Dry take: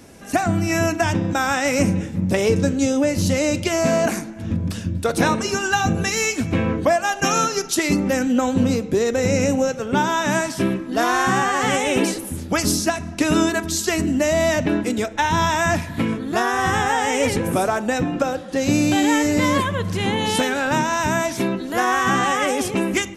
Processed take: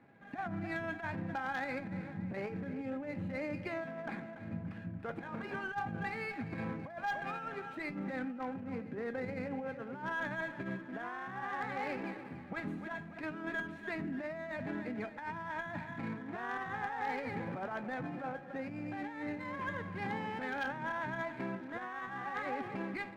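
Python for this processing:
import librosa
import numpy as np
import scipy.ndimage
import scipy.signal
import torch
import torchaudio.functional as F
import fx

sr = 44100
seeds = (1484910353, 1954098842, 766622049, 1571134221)

y = scipy.signal.sosfilt(scipy.signal.ellip(3, 1.0, 40, [120.0, 2100.0], 'bandpass', fs=sr, output='sos'), x)
y = fx.peak_eq(y, sr, hz=410.0, db=-6.5, octaves=1.5)
y = fx.echo_feedback(y, sr, ms=288, feedback_pct=43, wet_db=-14.5)
y = fx.over_compress(y, sr, threshold_db=-24.0, ratio=-0.5)
y = fx.comb_fb(y, sr, f0_hz=820.0, decay_s=0.28, harmonics='all', damping=0.0, mix_pct=80)
y = 10.0 ** (-26.5 / 20.0) * (np.abs((y / 10.0 ** (-26.5 / 20.0) + 3.0) % 4.0 - 2.0) - 1.0)
y = y + 10.0 ** (-24.0 / 20.0) * np.pad(y, (int(1014 * sr / 1000.0), 0))[:len(y)]
y = fx.running_max(y, sr, window=3)
y = y * librosa.db_to_amplitude(-1.5)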